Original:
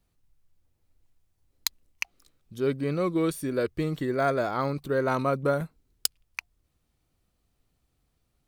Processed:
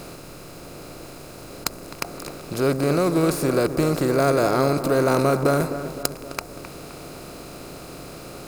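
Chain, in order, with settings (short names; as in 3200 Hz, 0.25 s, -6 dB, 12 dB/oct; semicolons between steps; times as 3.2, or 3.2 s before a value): per-bin compression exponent 0.4; low shelf 320 Hz +5 dB; tape echo 0.259 s, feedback 61%, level -9 dB, low-pass 1400 Hz; dynamic EQ 3100 Hz, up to -6 dB, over -42 dBFS, Q 1.4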